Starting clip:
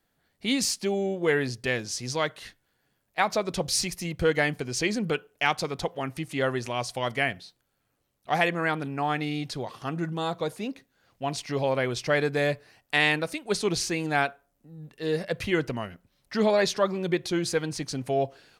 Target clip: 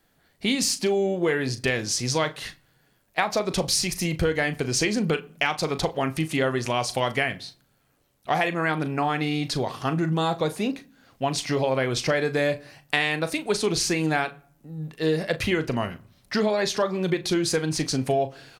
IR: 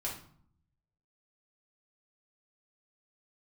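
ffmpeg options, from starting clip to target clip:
-filter_complex "[0:a]acompressor=threshold=-28dB:ratio=6,asplit=2[link_01][link_02];[link_02]adelay=38,volume=-12dB[link_03];[link_01][link_03]amix=inputs=2:normalize=0,asplit=2[link_04][link_05];[1:a]atrim=start_sample=2205[link_06];[link_05][link_06]afir=irnorm=-1:irlink=0,volume=-18dB[link_07];[link_04][link_07]amix=inputs=2:normalize=0,volume=7dB"

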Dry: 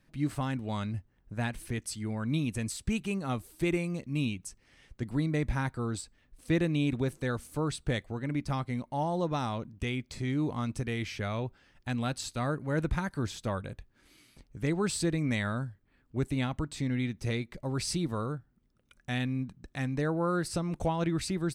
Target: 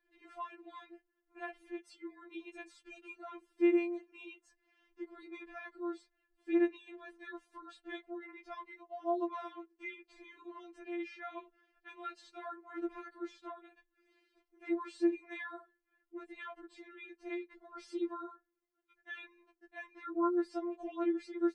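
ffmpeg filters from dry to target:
ffmpeg -i in.wav -filter_complex "[0:a]lowpass=6100,acrossover=split=190 2500:gain=0.141 1 0.2[link_01][link_02][link_03];[link_01][link_02][link_03]amix=inputs=3:normalize=0,afftfilt=real='re*4*eq(mod(b,16),0)':imag='im*4*eq(mod(b,16),0)':win_size=2048:overlap=0.75,volume=-4.5dB" out.wav

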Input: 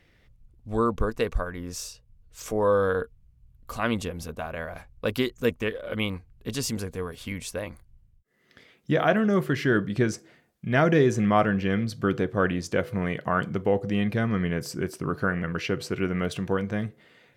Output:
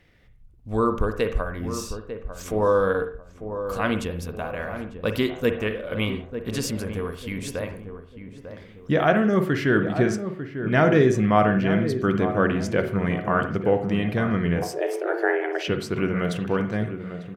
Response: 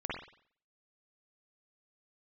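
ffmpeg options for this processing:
-filter_complex "[0:a]asplit=2[link_01][link_02];[link_02]adelay=897,lowpass=frequency=1100:poles=1,volume=-9dB,asplit=2[link_03][link_04];[link_04]adelay=897,lowpass=frequency=1100:poles=1,volume=0.4,asplit=2[link_05][link_06];[link_06]adelay=897,lowpass=frequency=1100:poles=1,volume=0.4,asplit=2[link_07][link_08];[link_08]adelay=897,lowpass=frequency=1100:poles=1,volume=0.4[link_09];[link_01][link_03][link_05][link_07][link_09]amix=inputs=5:normalize=0,asettb=1/sr,asplit=3[link_10][link_11][link_12];[link_10]atrim=end=14.624[link_13];[link_11]atrim=start=14.62:end=15.68,asetpts=PTS-STARTPTS,afade=type=in:duration=0.004:curve=qsin,afade=type=out:start_time=1.056:duration=0.004:curve=qsin,afreqshift=230[link_14];[link_12]atrim=start=15.676[link_15];[link_13][link_14]acrossfade=duration=0.004:curve1=hsin:curve2=qsin[link_16];[link_16][link_15]acrossfade=duration=0.004:curve1=qsin:curve2=hsin,asplit=2[link_17][link_18];[1:a]atrim=start_sample=2205,afade=type=out:start_time=0.23:duration=0.01,atrim=end_sample=10584,lowpass=4100[link_19];[link_18][link_19]afir=irnorm=-1:irlink=0,volume=-9dB[link_20];[link_17][link_20]amix=inputs=2:normalize=0"

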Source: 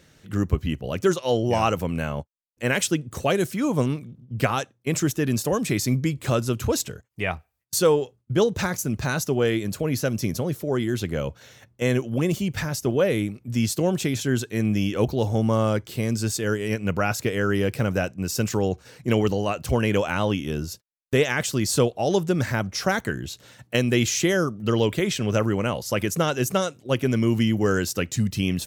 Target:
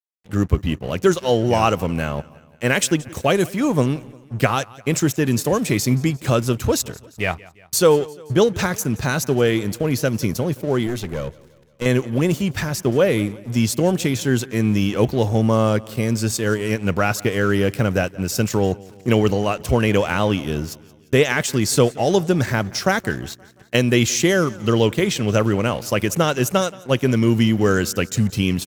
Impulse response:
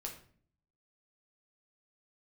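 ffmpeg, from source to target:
-filter_complex "[0:a]aeval=exprs='sgn(val(0))*max(abs(val(0))-0.0075,0)':channel_layout=same,asettb=1/sr,asplit=3[link_01][link_02][link_03];[link_01]atrim=end=10.874[link_04];[link_02]atrim=start=10.87:end=11.86,asetpts=PTS-STARTPTS,afade=type=in:duration=0.004:curve=qsin,afade=type=out:start_time=0.986:duration=0.004:curve=qsin,aeval=exprs='(tanh(12.6*val(0)+0.45)-tanh(0.45))/12.6':channel_layout=same[link_05];[link_03]atrim=start=11.856[link_06];[link_04][link_05]acrossfade=duration=0.004:curve1=hsin:curve2=qsin[link_07];[link_07][link_06]acrossfade=duration=0.004:curve1=qsin:curve2=hsin,aecho=1:1:175|350|525|700:0.0794|0.0429|0.0232|0.0125,volume=5dB"

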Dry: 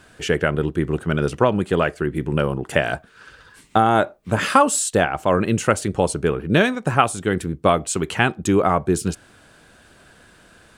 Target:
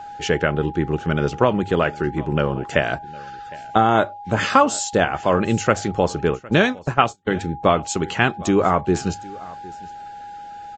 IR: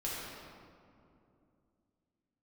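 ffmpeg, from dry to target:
-filter_complex "[0:a]aeval=exprs='val(0)+0.0224*sin(2*PI*820*n/s)':channel_layout=same,bandreject=frequency=50:width_type=h:width=6,bandreject=frequency=100:width_type=h:width=6,asplit=3[link_01][link_02][link_03];[link_01]afade=type=out:start_time=6.33:duration=0.02[link_04];[link_02]agate=range=-38dB:threshold=-20dB:ratio=16:detection=peak,afade=type=in:start_time=6.33:duration=0.02,afade=type=out:start_time=7.36:duration=0.02[link_05];[link_03]afade=type=in:start_time=7.36:duration=0.02[link_06];[link_04][link_05][link_06]amix=inputs=3:normalize=0,aecho=1:1:759:0.0841" -ar 16000 -c:a libvorbis -b:a 32k

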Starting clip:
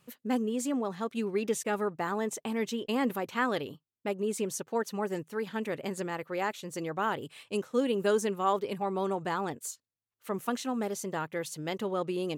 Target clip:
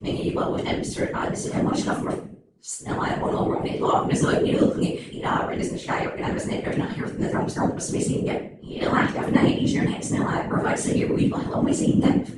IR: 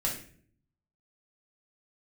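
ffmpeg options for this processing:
-filter_complex "[0:a]areverse[link_01];[1:a]atrim=start_sample=2205,asetrate=48510,aresample=44100[link_02];[link_01][link_02]afir=irnorm=-1:irlink=0,aresample=22050,aresample=44100,afftfilt=real='hypot(re,im)*cos(2*PI*random(0))':imag='hypot(re,im)*sin(2*PI*random(1))':win_size=512:overlap=0.75,volume=8.5dB"

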